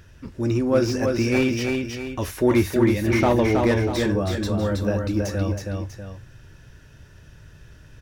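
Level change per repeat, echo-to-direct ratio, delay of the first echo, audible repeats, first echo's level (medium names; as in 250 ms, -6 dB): -7.5 dB, -3.5 dB, 322 ms, 2, -4.0 dB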